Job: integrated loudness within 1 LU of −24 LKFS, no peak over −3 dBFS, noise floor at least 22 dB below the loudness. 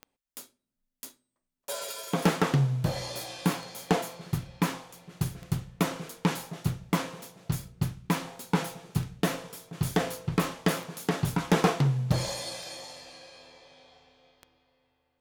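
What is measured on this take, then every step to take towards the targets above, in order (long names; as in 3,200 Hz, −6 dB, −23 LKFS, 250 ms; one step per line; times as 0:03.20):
number of clicks 9; integrated loudness −30.5 LKFS; sample peak −13.0 dBFS; target loudness −24.0 LKFS
→ click removal
level +6.5 dB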